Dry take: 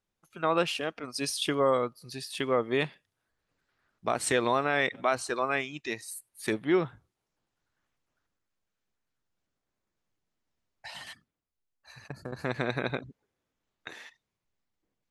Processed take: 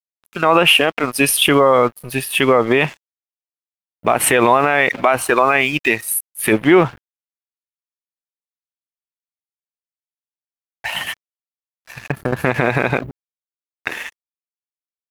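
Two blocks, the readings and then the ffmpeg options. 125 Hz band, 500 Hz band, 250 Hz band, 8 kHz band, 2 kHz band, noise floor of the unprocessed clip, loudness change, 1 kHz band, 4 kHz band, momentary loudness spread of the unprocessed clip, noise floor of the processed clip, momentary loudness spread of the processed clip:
+14.5 dB, +13.0 dB, +14.0 dB, +16.0 dB, +16.0 dB, -85 dBFS, +14.5 dB, +14.5 dB, +16.0 dB, 18 LU, under -85 dBFS, 15 LU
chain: -af "highshelf=f=3500:t=q:w=3:g=-7.5,aexciter=amount=6.6:drive=6.7:freq=10000,adynamicequalizer=threshold=0.0141:dfrequency=830:dqfactor=1.4:tfrequency=830:tqfactor=1.4:attack=5:release=100:ratio=0.375:range=2.5:mode=boostabove:tftype=bell,aeval=exprs='sgn(val(0))*max(abs(val(0))-0.00237,0)':c=same,alimiter=level_in=10.6:limit=0.891:release=50:level=0:latency=1,volume=0.891"

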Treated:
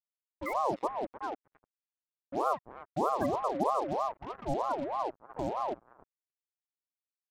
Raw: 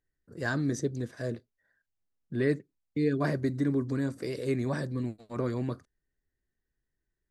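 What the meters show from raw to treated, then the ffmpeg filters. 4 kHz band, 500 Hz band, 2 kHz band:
-4.0 dB, -1.0 dB, -9.0 dB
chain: -filter_complex "[0:a]highpass=f=47:w=0.5412,highpass=f=47:w=1.3066,aemphasis=mode=reproduction:type=cd,agate=range=0.0224:threshold=0.00282:ratio=3:detection=peak,bandreject=f=86.96:t=h:w=4,bandreject=f=173.92:t=h:w=4,bandreject=f=260.88:t=h:w=4,bandreject=f=347.84:t=h:w=4,bandreject=f=434.8:t=h:w=4,afftfilt=real='re*gte(hypot(re,im),0.141)':imag='im*gte(hypot(re,im),0.141)':win_size=1024:overlap=0.75,equalizer=f=125:t=o:w=1:g=6,equalizer=f=500:t=o:w=1:g=-6,equalizer=f=1000:t=o:w=1:g=6,equalizer=f=4000:t=o:w=1:g=-11,equalizer=f=8000:t=o:w=1:g=5,asplit=2[s0][s1];[s1]aecho=0:1:303|606|909|1212:0.112|0.0527|0.0248|0.0116[s2];[s0][s2]amix=inputs=2:normalize=0,acrusher=bits=6:mix=0:aa=0.5,aeval=exprs='val(0)*sin(2*PI*680*n/s+680*0.4/3.2*sin(2*PI*3.2*n/s))':c=same"

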